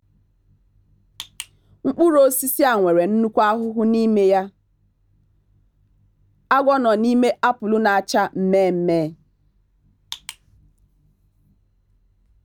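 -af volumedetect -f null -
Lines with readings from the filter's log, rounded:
mean_volume: -21.0 dB
max_volume: -3.1 dB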